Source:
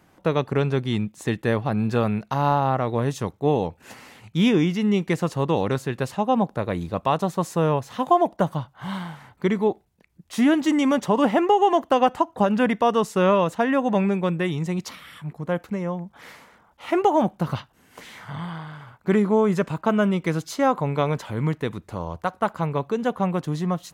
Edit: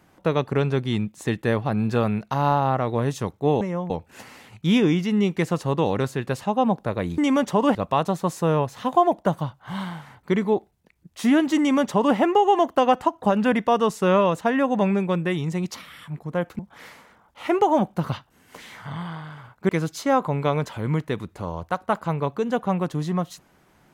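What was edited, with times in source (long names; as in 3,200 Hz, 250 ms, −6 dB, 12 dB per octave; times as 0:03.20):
0:10.73–0:11.30: duplicate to 0:06.89
0:15.73–0:16.02: move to 0:03.61
0:19.12–0:20.22: remove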